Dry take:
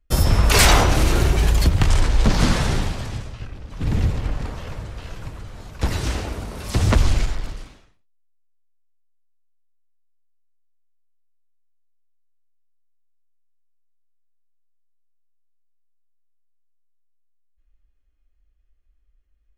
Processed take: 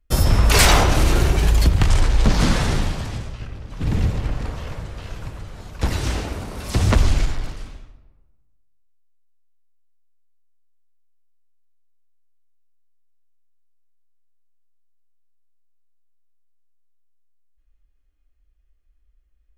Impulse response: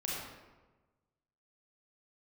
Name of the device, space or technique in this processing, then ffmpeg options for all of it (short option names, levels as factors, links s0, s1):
saturated reverb return: -filter_complex "[0:a]asplit=2[s0][s1];[1:a]atrim=start_sample=2205[s2];[s1][s2]afir=irnorm=-1:irlink=0,asoftclip=type=tanh:threshold=0.335,volume=0.266[s3];[s0][s3]amix=inputs=2:normalize=0,volume=0.891"